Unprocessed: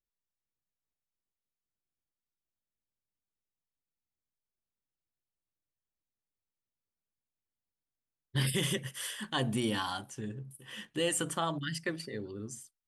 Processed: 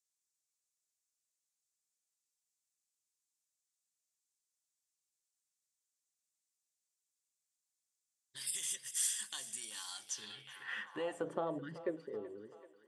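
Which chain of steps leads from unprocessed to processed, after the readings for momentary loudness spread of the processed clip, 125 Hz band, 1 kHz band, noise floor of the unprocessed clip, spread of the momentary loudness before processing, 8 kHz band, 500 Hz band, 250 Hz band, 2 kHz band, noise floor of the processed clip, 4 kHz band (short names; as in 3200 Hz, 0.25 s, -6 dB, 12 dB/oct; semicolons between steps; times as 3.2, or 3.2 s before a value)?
14 LU, -21.0 dB, -9.5 dB, under -85 dBFS, 12 LU, +1.0 dB, -4.5 dB, -11.5 dB, -8.0 dB, under -85 dBFS, -8.5 dB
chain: ending faded out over 3.60 s; compressor 6:1, threshold -38 dBFS, peak gain reduction 11.5 dB; notch 3000 Hz, Q 15; thinning echo 0.382 s, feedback 69%, high-pass 420 Hz, level -15 dB; band-pass sweep 7300 Hz -> 470 Hz, 9.95–11.35; gain +14.5 dB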